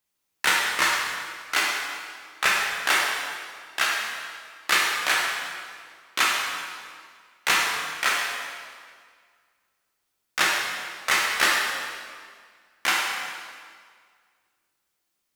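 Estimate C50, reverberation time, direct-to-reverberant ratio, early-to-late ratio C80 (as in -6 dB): 0.0 dB, 1.9 s, -3.5 dB, 2.0 dB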